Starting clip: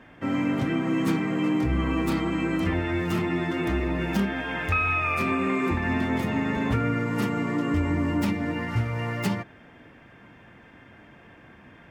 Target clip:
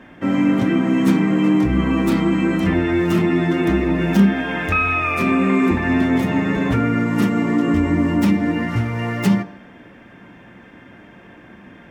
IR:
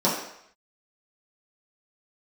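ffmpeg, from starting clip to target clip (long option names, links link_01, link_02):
-filter_complex "[0:a]asplit=2[link_01][link_02];[1:a]atrim=start_sample=2205,lowshelf=frequency=260:gain=9[link_03];[link_02][link_03]afir=irnorm=-1:irlink=0,volume=-27dB[link_04];[link_01][link_04]amix=inputs=2:normalize=0,volume=5dB"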